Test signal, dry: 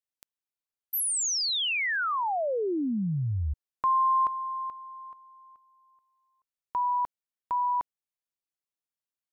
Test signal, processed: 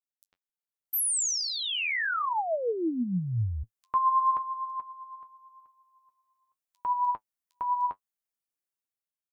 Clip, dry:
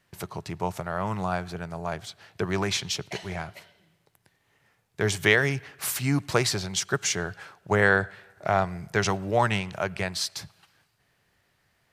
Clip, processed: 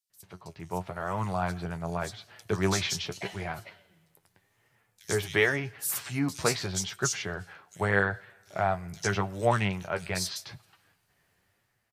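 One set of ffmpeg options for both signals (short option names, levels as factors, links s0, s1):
-filter_complex "[0:a]highshelf=f=7600:g=5.5,acrossover=split=4100[s0][s1];[s0]adelay=100[s2];[s2][s1]amix=inputs=2:normalize=0,flanger=delay=7.9:depth=4.9:regen=42:speed=0.85:shape=triangular,dynaudnorm=f=240:g=7:m=3.55,volume=0.398"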